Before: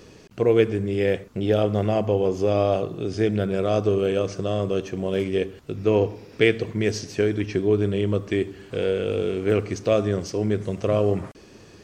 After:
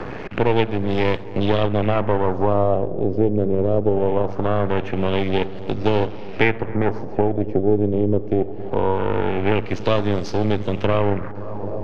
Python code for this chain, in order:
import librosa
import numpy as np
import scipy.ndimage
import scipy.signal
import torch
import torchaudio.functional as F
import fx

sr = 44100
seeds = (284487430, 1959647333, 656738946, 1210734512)

y = np.maximum(x, 0.0)
y = fx.echo_filtered(y, sr, ms=261, feedback_pct=85, hz=2600.0, wet_db=-23.0)
y = fx.filter_lfo_lowpass(y, sr, shape='sine', hz=0.22, low_hz=430.0, high_hz=4300.0, q=1.7)
y = fx.band_squash(y, sr, depth_pct=70)
y = F.gain(torch.from_numpy(y), 4.0).numpy()